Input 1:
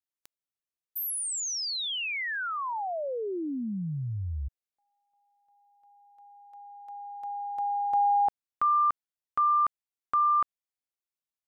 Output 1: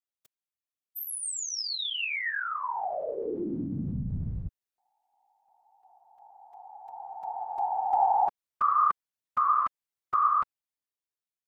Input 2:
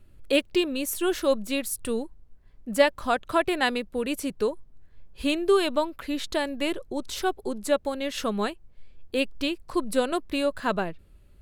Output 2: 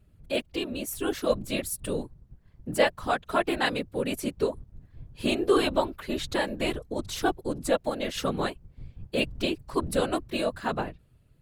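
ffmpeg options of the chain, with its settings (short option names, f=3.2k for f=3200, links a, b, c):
-af "dynaudnorm=f=500:g=5:m=6dB,afftfilt=real='hypot(re,im)*cos(2*PI*random(0))':imag='hypot(re,im)*sin(2*PI*random(1))':win_size=512:overlap=0.75"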